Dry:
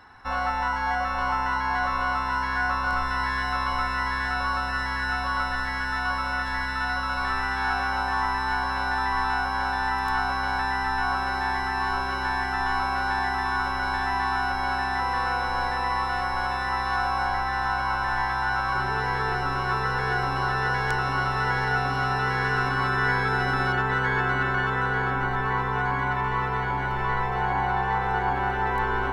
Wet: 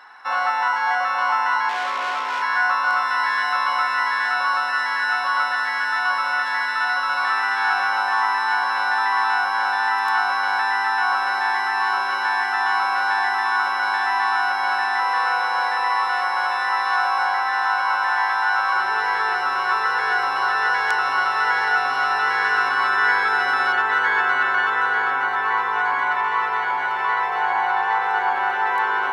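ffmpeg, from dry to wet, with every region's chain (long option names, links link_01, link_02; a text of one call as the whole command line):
ffmpeg -i in.wav -filter_complex "[0:a]asettb=1/sr,asplit=3[link_01][link_02][link_03];[link_01]atrim=end=1.694[link_04];[link_02]atrim=start=1.69:end=2.42,asetpts=PTS-STARTPTS,afade=type=in:duration=0.004:curve=qsin,afade=type=out:start_time=0.726:duration=0.004:curve=qsin,equalizer=frequency=390:width_type=o:width=1.4:gain=13.5,aeval=exprs='(tanh(20*val(0)+0.7)-tanh(0.7))/20':channel_layout=same[link_05];[link_03]atrim=start=2.416[link_06];[link_04][link_05]acrossfade=duration=0.004:curve1=hsin:curve2=qsin[link_07];[link_07][link_06]acrossfade=duration=0.004:curve1=qsin:curve2=hsin,highpass=800,highshelf=frequency=4600:gain=-5,volume=7.5dB" out.wav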